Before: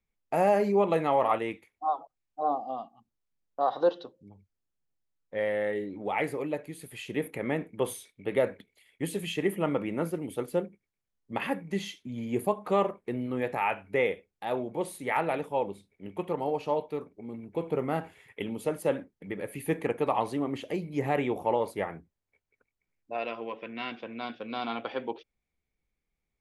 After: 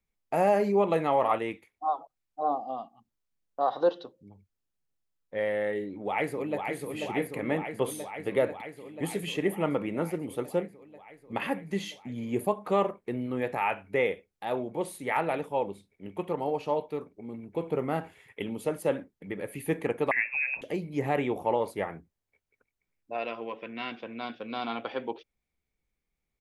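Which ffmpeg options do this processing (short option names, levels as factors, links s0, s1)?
-filter_complex "[0:a]asplit=2[s0][s1];[s1]afade=t=in:st=5.87:d=0.01,afade=t=out:st=6.63:d=0.01,aecho=0:1:490|980|1470|1960|2450|2940|3430|3920|4410|4900|5390|5880:0.595662|0.47653|0.381224|0.304979|0.243983|0.195187|0.156149|0.124919|0.0999355|0.0799484|0.0639587|0.051167[s2];[s0][s2]amix=inputs=2:normalize=0,asettb=1/sr,asplit=3[s3][s4][s5];[s3]atrim=end=20.114[s6];[s4]atrim=start=20.11:end=20.62,asetpts=PTS-STARTPTS,afade=t=in:d=0.004:c=qsin,afade=t=out:st=0.506:d=0.004:c=qsin,lowpass=f=2400:t=q:w=0.5098,lowpass=f=2400:t=q:w=0.6013,lowpass=f=2400:t=q:w=0.9,lowpass=f=2400:t=q:w=2.563,afreqshift=-2800[s7];[s5]atrim=start=20.616[s8];[s6][s7]acrossfade=d=0.004:c1=hsin:c2=qsin[s9];[s9][s8]acrossfade=d=0.004:c1=qsin:c2=hsin"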